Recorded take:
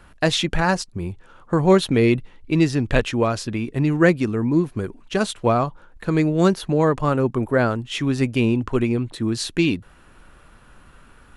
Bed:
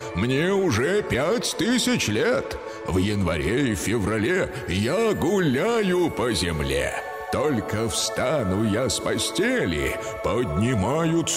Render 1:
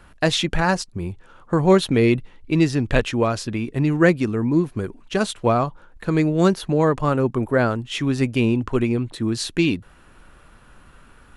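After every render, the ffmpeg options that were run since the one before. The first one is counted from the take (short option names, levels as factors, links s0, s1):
-af anull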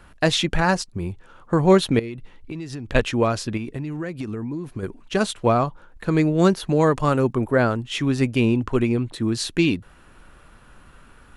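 -filter_complex "[0:a]asettb=1/sr,asplit=3[s0][s1][s2];[s0]atrim=end=1.994[s3];[s1]atrim=start=1.99:end=2.95,asetpts=PTS-STARTPTS,afade=t=in:d=0.004:c=qsin,afade=t=out:st=0.956:d=0.004:c=qsin,acompressor=threshold=0.0398:ratio=12:attack=3.2:release=140:knee=1:detection=peak[s4];[s2]atrim=start=2.946[s5];[s3][s4]acrossfade=d=0.004:c1=hsin:c2=qsin[s6];[s6][s5]acrossfade=d=0.004:c1=qsin:c2=hsin,asettb=1/sr,asplit=3[s7][s8][s9];[s7]atrim=end=3.574[s10];[s8]atrim=start=3.57:end=4.83,asetpts=PTS-STARTPTS,afade=t=in:d=0.004:c=qsin,afade=t=out:st=1.256:d=0.004:c=qsin,acompressor=threshold=0.0562:ratio=12:attack=3.2:release=140:knee=1:detection=peak[s11];[s9]atrim=start=4.826[s12];[s10][s11]acrossfade=d=0.004:c1=hsin:c2=qsin[s13];[s13][s12]acrossfade=d=0.004:c1=qsin:c2=hsin,asettb=1/sr,asplit=3[s14][s15][s16];[s14]atrim=end=6.684[s17];[s15]atrim=start=6.68:end=7.33,asetpts=PTS-STARTPTS,afade=t=in:d=0.004:c=qsin,afade=t=out:st=0.646:d=0.004:c=qsin,highshelf=f=3300:g=7[s18];[s16]atrim=start=7.326[s19];[s17][s18]acrossfade=d=0.004:c1=hsin:c2=qsin[s20];[s20][s19]acrossfade=d=0.004:c1=qsin:c2=hsin"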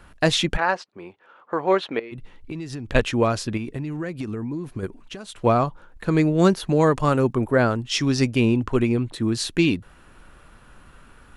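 -filter_complex "[0:a]asplit=3[s0][s1][s2];[s0]afade=t=out:st=0.56:d=0.02[s3];[s1]highpass=480,lowpass=2800,afade=t=in:st=0.56:d=0.02,afade=t=out:st=2.11:d=0.02[s4];[s2]afade=t=in:st=2.11:d=0.02[s5];[s3][s4][s5]amix=inputs=3:normalize=0,asplit=3[s6][s7][s8];[s6]afade=t=out:st=4.86:d=0.02[s9];[s7]acompressor=threshold=0.0251:ratio=16:attack=3.2:release=140:knee=1:detection=peak,afade=t=in:st=4.86:d=0.02,afade=t=out:st=5.4:d=0.02[s10];[s8]afade=t=in:st=5.4:d=0.02[s11];[s9][s10][s11]amix=inputs=3:normalize=0,asettb=1/sr,asplit=3[s12][s13][s14];[s12]atrim=end=7.894[s15];[s13]atrim=start=7.89:end=8.3,asetpts=PTS-STARTPTS,afade=t=in:d=0.004:c=qsin,afade=t=out:st=0.406:d=0.004:c=qsin,equalizer=f=5300:t=o:w=0.59:g=14[s16];[s14]atrim=start=8.296[s17];[s15][s16]acrossfade=d=0.004:c1=hsin:c2=qsin[s18];[s18][s17]acrossfade=d=0.004:c1=qsin:c2=hsin"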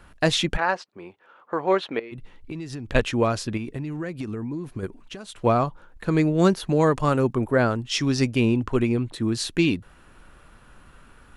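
-af "volume=0.841"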